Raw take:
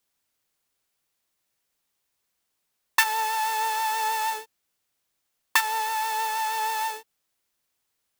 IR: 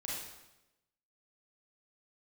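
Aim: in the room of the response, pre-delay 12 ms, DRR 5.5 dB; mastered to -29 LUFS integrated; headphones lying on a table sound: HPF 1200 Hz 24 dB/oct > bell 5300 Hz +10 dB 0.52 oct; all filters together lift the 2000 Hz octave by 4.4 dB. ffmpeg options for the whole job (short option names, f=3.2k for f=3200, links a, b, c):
-filter_complex "[0:a]equalizer=f=2k:t=o:g=5,asplit=2[a][b];[1:a]atrim=start_sample=2205,adelay=12[c];[b][c]afir=irnorm=-1:irlink=0,volume=-6.5dB[d];[a][d]amix=inputs=2:normalize=0,highpass=f=1.2k:w=0.5412,highpass=f=1.2k:w=1.3066,equalizer=f=5.3k:t=o:w=0.52:g=10,volume=-5.5dB"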